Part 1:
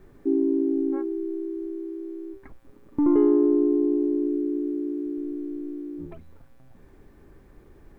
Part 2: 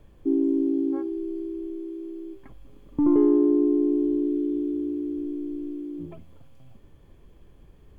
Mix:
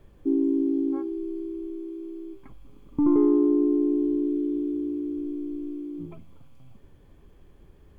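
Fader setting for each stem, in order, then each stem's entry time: −10.5, −1.5 decibels; 0.00, 0.00 seconds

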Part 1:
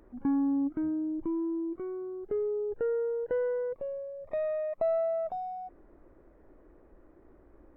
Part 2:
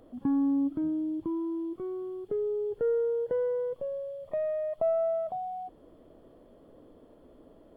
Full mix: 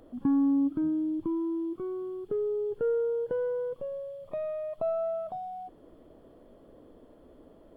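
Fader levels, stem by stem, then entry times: −8.0, +0.5 decibels; 0.00, 0.00 seconds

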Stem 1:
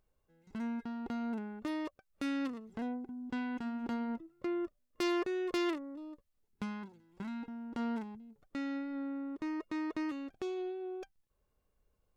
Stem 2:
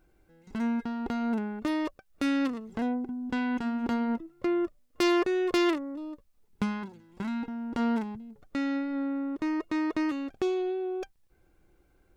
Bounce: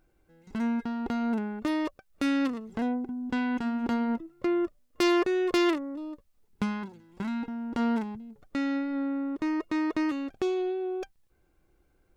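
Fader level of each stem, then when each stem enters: +0.5, −3.5 decibels; 0.00, 0.00 seconds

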